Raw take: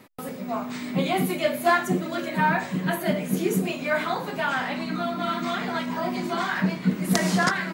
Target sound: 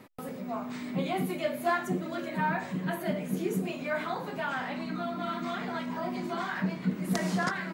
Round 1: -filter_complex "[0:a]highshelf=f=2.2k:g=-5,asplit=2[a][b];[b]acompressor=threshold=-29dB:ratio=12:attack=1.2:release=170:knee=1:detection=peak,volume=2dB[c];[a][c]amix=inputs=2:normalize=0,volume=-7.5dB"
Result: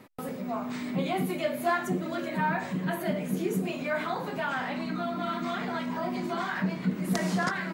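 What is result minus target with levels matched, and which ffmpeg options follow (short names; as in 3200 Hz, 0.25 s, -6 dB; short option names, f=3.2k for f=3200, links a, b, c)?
compressor: peak gain reduction -8 dB
-filter_complex "[0:a]highshelf=f=2.2k:g=-5,asplit=2[a][b];[b]acompressor=threshold=-37.5dB:ratio=12:attack=1.2:release=170:knee=1:detection=peak,volume=2dB[c];[a][c]amix=inputs=2:normalize=0,volume=-7.5dB"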